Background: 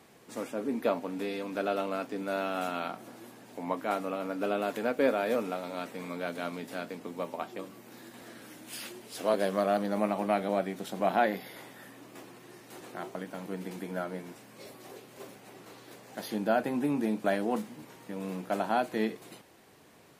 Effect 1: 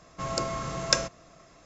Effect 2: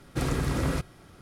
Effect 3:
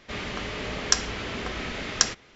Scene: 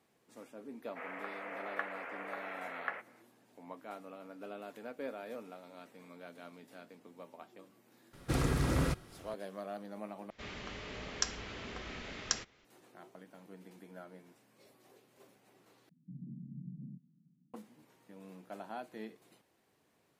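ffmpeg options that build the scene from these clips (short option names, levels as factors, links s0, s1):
-filter_complex "[3:a]asplit=2[s0][s1];[0:a]volume=0.168[s2];[s0]highpass=f=440:t=q:w=0.5412,highpass=f=440:t=q:w=1.307,lowpass=f=2100:t=q:w=0.5176,lowpass=f=2100:t=q:w=0.7071,lowpass=f=2100:t=q:w=1.932,afreqshift=69[s3];[1:a]asuperpass=centerf=190:order=8:qfactor=1.6[s4];[s2]asplit=3[s5][s6][s7];[s5]atrim=end=10.304[s8];[s1]atrim=end=2.35,asetpts=PTS-STARTPTS,volume=0.251[s9];[s6]atrim=start=12.646:end=15.894[s10];[s4]atrim=end=1.65,asetpts=PTS-STARTPTS,volume=0.562[s11];[s7]atrim=start=17.536[s12];[s3]atrim=end=2.35,asetpts=PTS-STARTPTS,volume=0.447,afade=t=in:d=0.004:c=hsin,afade=t=out:st=2.346:d=0.004:c=hsin,adelay=870[s13];[2:a]atrim=end=1.21,asetpts=PTS-STARTPTS,volume=0.668,afade=t=in:d=0.004:c=hsin,afade=t=out:st=1.206:d=0.004:c=hsin,adelay=8130[s14];[s8][s9]acrossfade=d=0.004:c1=hsin:c2=hsin[s15];[s15][s10]acrossfade=d=0.004:c1=hsin:c2=hsin[s16];[s16][s11]acrossfade=d=0.004:c1=hsin:c2=hsin[s17];[s17][s12]acrossfade=d=0.004:c1=hsin:c2=hsin[s18];[s18][s13][s14]amix=inputs=3:normalize=0"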